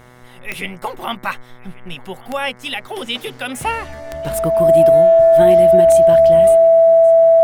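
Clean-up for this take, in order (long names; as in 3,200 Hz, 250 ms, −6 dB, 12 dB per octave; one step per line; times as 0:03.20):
click removal
hum removal 123.5 Hz, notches 18
notch filter 660 Hz, Q 30
echo removal 1,138 ms −23.5 dB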